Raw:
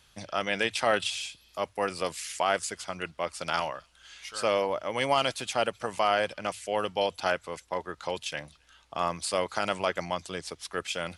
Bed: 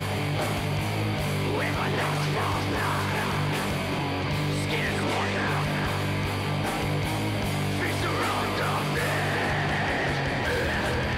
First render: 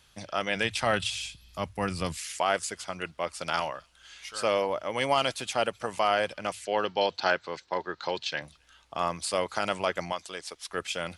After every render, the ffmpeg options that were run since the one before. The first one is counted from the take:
-filter_complex "[0:a]asplit=3[s0][s1][s2];[s0]afade=t=out:st=0.55:d=0.02[s3];[s1]asubboost=boost=11:cutoff=180,afade=t=in:st=0.55:d=0.02,afade=t=out:st=2.16:d=0.02[s4];[s2]afade=t=in:st=2.16:d=0.02[s5];[s3][s4][s5]amix=inputs=3:normalize=0,asettb=1/sr,asplit=3[s6][s7][s8];[s6]atrim=end=6.654[s9];[s7]atrim=start=6.65:end=8.42,asetpts=PTS-STARTPTS,afade=t=in:d=0.004:c=qsin,afade=t=out:st=1.766:d=0.004:c=qsin,highpass=110,equalizer=f=370:t=q:w=4:g=4,equalizer=f=880:t=q:w=4:g=3,equalizer=f=1600:t=q:w=4:g=5,equalizer=f=4200:t=q:w=4:g=9,lowpass=f=6100:w=0.5412,lowpass=f=6100:w=1.3066[s10];[s8]atrim=start=8.416[s11];[s9][s10]acrossfade=d=0.004:c1=hsin:c2=qsin[s12];[s12][s11]acrossfade=d=0.004:c1=qsin:c2=hsin,asettb=1/sr,asplit=3[s13][s14][s15];[s13]atrim=end=10.124[s16];[s14]atrim=start=10.12:end=10.71,asetpts=PTS-STARTPTS,afade=t=in:d=0.004:c=qsin,afade=t=out:st=0.586:d=0.004:c=qsin,equalizer=f=110:w=0.49:g=-15[s17];[s15]atrim=start=10.706[s18];[s16][s17]acrossfade=d=0.004:c1=hsin:c2=qsin[s19];[s19][s18]acrossfade=d=0.004:c1=qsin:c2=hsin"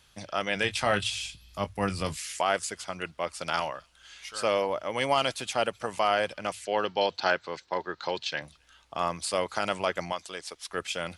-filter_complex "[0:a]asettb=1/sr,asplit=3[s0][s1][s2];[s0]atrim=end=0.604[s3];[s1]atrim=start=0.6:end=2.42,asetpts=PTS-STARTPTS,afade=t=in:d=0.004:c=qsin,afade=t=out:st=1.816:d=0.004:c=qsin,asplit=2[s4][s5];[s5]adelay=20,volume=0.335[s6];[s4][s6]amix=inputs=2:normalize=0,atrim=end_sample=80262[s7];[s2]atrim=start=2.416[s8];[s3][s7]acrossfade=d=0.004:c1=hsin:c2=qsin[s9];[s9][s8]acrossfade=d=0.004:c1=qsin:c2=hsin"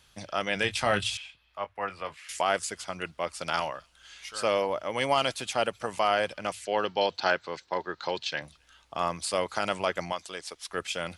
-filter_complex "[0:a]asettb=1/sr,asplit=3[s0][s1][s2];[s0]atrim=end=1.174[s3];[s1]atrim=start=1.17:end=2.29,asetpts=PTS-STARTPTS,afade=t=in:d=0.004:c=qsin,afade=t=out:st=1.116:d=0.004:c=qsin,acrossover=split=490 2800:gain=0.112 1 0.0708[s4][s5][s6];[s4][s5][s6]amix=inputs=3:normalize=0[s7];[s2]atrim=start=2.286[s8];[s3][s7]acrossfade=d=0.004:c1=hsin:c2=qsin[s9];[s9][s8]acrossfade=d=0.004:c1=qsin:c2=hsin"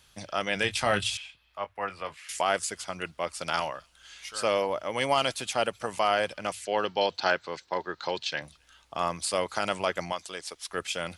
-af "highshelf=f=7200:g=4"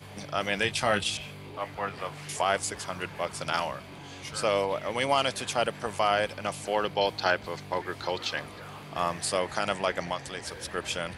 -filter_complex "[1:a]volume=0.141[s0];[0:a][s0]amix=inputs=2:normalize=0"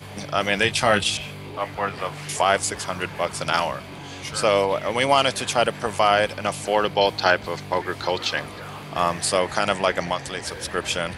-af "volume=2.24"

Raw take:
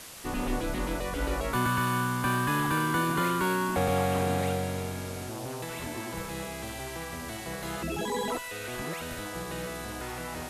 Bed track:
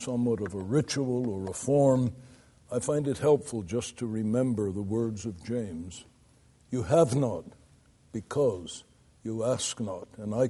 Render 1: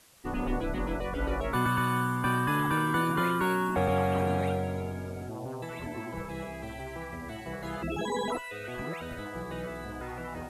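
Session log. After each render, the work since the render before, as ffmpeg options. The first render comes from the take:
-af "afftdn=nr=14:nf=-39"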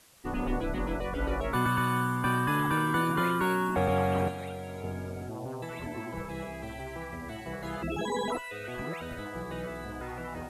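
-filter_complex "[0:a]asettb=1/sr,asplit=3[s0][s1][s2];[s0]atrim=end=4.284[s3];[s1]atrim=start=4.28:end=4.84,asetpts=PTS-STARTPTS,afade=t=in:d=0.004:c=qsin,afade=t=out:st=0.556:d=0.004:c=qsin,acrossover=split=360|2300[s4][s5][s6];[s4]acompressor=threshold=0.00891:ratio=4[s7];[s5]acompressor=threshold=0.01:ratio=4[s8];[s6]acompressor=threshold=0.00355:ratio=4[s9];[s7][s8][s9]amix=inputs=3:normalize=0[s10];[s2]atrim=start=4.836[s11];[s3][s10]acrossfade=d=0.004:c1=hsin:c2=qsin[s12];[s12][s11]acrossfade=d=0.004:c1=qsin:c2=hsin"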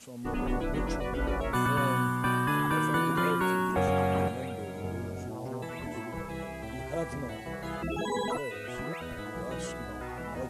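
-filter_complex "[1:a]volume=0.224[s0];[0:a][s0]amix=inputs=2:normalize=0"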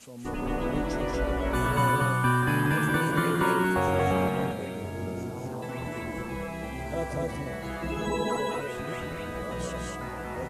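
-filter_complex "[0:a]asplit=2[s0][s1];[s1]adelay=14,volume=0.282[s2];[s0][s2]amix=inputs=2:normalize=0,aecho=1:1:183.7|233.2:0.501|0.794"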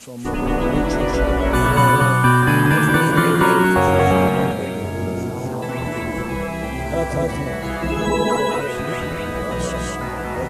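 -af "volume=3.16,alimiter=limit=0.794:level=0:latency=1"

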